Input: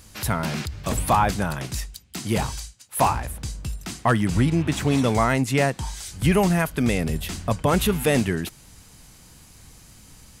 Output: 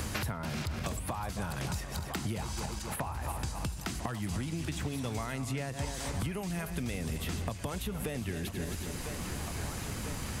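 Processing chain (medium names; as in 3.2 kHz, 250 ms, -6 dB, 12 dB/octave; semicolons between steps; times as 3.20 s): backward echo that repeats 133 ms, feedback 50%, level -12.5 dB; compression 10:1, threshold -34 dBFS, peak gain reduction 19.5 dB; peaking EQ 77 Hz +8 dB 0.46 oct; thinning echo 999 ms, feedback 74%, high-pass 420 Hz, level -16.5 dB; three bands compressed up and down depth 100%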